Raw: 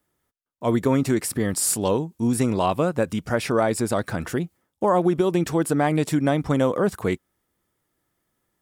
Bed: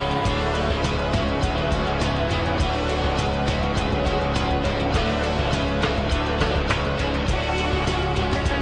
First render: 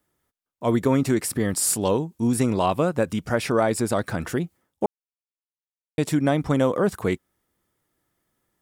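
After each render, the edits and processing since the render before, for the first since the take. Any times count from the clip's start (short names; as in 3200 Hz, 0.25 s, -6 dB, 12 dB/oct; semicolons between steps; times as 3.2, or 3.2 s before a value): 4.86–5.98 mute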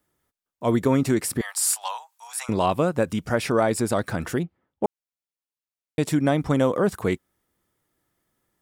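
1.41–2.49 steep high-pass 740 Hz 48 dB/oct; 4.43–4.84 air absorption 360 m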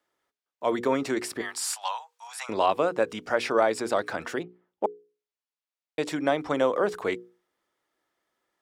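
three-band isolator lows -19 dB, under 320 Hz, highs -14 dB, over 6300 Hz; notches 60/120/180/240/300/360/420/480 Hz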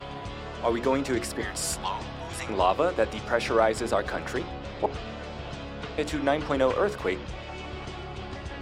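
add bed -15 dB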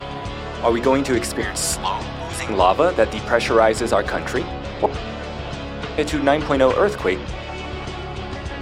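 gain +8 dB; limiter -3 dBFS, peak gain reduction 1.5 dB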